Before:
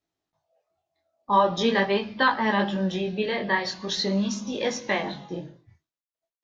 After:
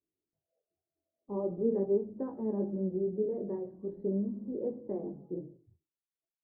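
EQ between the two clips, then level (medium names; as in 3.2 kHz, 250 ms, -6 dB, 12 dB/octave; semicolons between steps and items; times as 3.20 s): four-pole ladder low-pass 470 Hz, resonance 50%; 0.0 dB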